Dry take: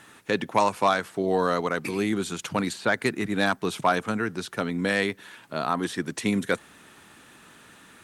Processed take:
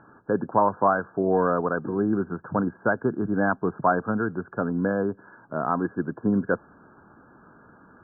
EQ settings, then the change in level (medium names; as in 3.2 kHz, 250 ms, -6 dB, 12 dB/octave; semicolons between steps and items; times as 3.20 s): brick-wall FIR low-pass 1.7 kHz; distance through air 420 m; +3.0 dB